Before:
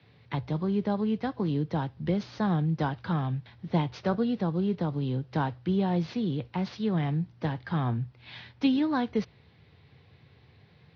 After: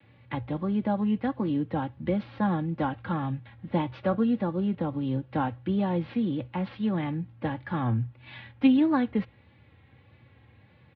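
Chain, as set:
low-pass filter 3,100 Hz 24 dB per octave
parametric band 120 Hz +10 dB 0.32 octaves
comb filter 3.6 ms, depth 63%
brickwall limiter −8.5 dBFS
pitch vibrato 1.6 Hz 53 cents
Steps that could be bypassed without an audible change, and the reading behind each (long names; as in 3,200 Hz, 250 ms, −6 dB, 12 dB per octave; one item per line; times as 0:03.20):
brickwall limiter −8.5 dBFS: peak of its input −11.0 dBFS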